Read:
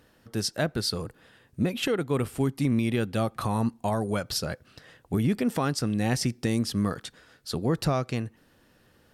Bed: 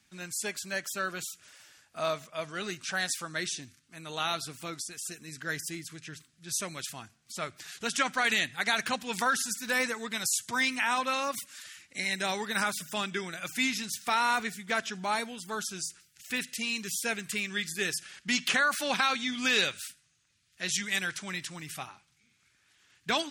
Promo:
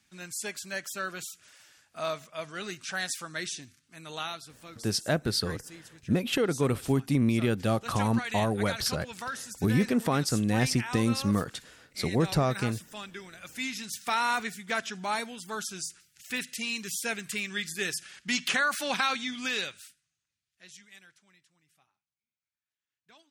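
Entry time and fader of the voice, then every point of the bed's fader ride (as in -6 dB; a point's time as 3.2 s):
4.50 s, 0.0 dB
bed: 4.16 s -1.5 dB
4.4 s -9 dB
13.37 s -9 dB
14.02 s -0.5 dB
19.16 s -0.5 dB
21.5 s -29.5 dB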